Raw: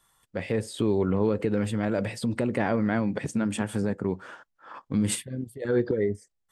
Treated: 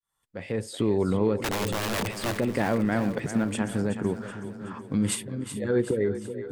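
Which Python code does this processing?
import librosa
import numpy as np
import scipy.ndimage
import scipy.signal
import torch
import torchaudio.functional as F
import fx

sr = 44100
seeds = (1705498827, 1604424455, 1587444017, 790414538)

y = fx.fade_in_head(x, sr, length_s=0.73)
y = fx.overflow_wrap(y, sr, gain_db=23.0, at=(1.39, 2.35))
y = fx.echo_split(y, sr, split_hz=330.0, low_ms=598, high_ms=375, feedback_pct=52, wet_db=-10.5)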